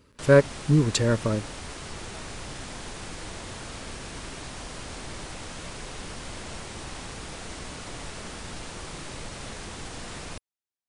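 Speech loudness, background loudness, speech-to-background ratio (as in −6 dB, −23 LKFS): −22.5 LKFS, −38.0 LKFS, 15.5 dB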